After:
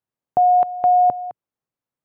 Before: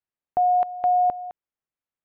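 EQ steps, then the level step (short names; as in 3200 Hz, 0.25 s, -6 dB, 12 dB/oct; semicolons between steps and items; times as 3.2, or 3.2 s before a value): graphic EQ 125/250/500/1000 Hz +11/+6/+6/+5 dB; -1.0 dB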